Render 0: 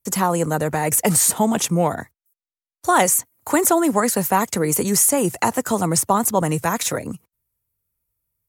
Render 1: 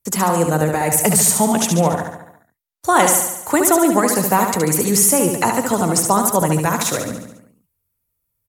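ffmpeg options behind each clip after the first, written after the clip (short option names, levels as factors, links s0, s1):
-af "aecho=1:1:71|142|213|284|355|426|497:0.531|0.297|0.166|0.0932|0.0522|0.0292|0.0164,volume=1.19"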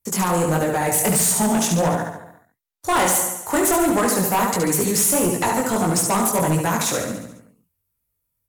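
-af "acrusher=bits=8:mode=log:mix=0:aa=0.000001,flanger=delay=16.5:depth=7.1:speed=1.5,asoftclip=type=hard:threshold=0.158,volume=1.19"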